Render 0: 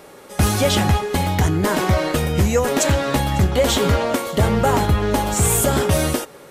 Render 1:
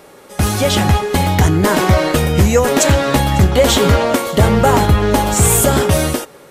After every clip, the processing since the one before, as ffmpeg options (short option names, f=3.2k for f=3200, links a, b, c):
-af "dynaudnorm=f=180:g=9:m=7dB,volume=1dB"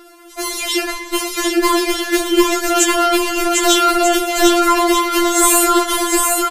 -filter_complex "[0:a]asplit=2[a][b];[b]aecho=0:1:750|1238|1554|1760|1894:0.631|0.398|0.251|0.158|0.1[c];[a][c]amix=inputs=2:normalize=0,afftfilt=real='re*4*eq(mod(b,16),0)':imag='im*4*eq(mod(b,16),0)':win_size=2048:overlap=0.75,volume=2.5dB"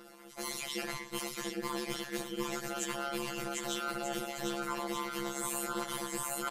-af "tremolo=f=140:d=0.974,areverse,acompressor=threshold=-28dB:ratio=4,areverse,volume=-7dB"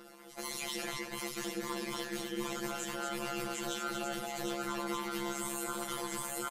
-filter_complex "[0:a]alimiter=level_in=3dB:limit=-24dB:level=0:latency=1:release=60,volume=-3dB,asplit=2[a][b];[b]aecho=0:1:235:0.531[c];[a][c]amix=inputs=2:normalize=0"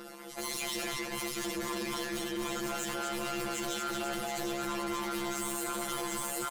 -af "asoftclip=type=tanh:threshold=-38dB,volume=7.5dB"